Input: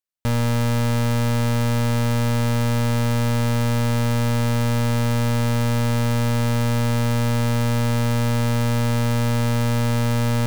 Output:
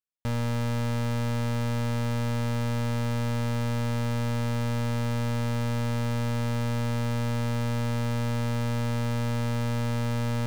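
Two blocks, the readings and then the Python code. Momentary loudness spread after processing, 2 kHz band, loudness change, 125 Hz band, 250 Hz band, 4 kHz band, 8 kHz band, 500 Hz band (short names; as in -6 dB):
0 LU, -8.0 dB, -7.5 dB, -7.5 dB, -7.5 dB, -8.5 dB, -10.5 dB, -7.5 dB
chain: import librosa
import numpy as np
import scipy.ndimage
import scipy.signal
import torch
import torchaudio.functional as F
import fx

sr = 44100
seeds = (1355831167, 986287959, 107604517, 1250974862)

y = fx.high_shelf(x, sr, hz=8400.0, db=-7.0)
y = y * librosa.db_to_amplitude(-7.5)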